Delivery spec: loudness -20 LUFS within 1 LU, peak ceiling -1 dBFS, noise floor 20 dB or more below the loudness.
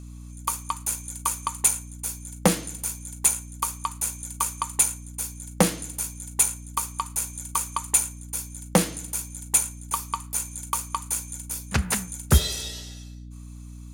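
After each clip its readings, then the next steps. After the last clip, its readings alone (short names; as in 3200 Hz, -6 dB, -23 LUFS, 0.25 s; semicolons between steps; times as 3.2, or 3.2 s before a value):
hum 60 Hz; harmonics up to 300 Hz; hum level -38 dBFS; loudness -26.0 LUFS; peak -3.0 dBFS; loudness target -20.0 LUFS
-> de-hum 60 Hz, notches 5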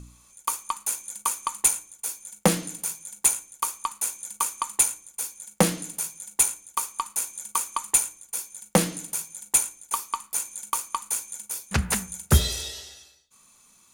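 hum none; loudness -26.0 LUFS; peak -3.0 dBFS; loudness target -20.0 LUFS
-> gain +6 dB; limiter -1 dBFS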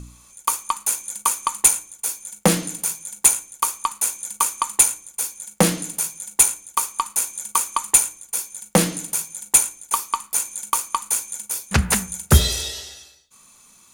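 loudness -20.5 LUFS; peak -1.0 dBFS; noise floor -52 dBFS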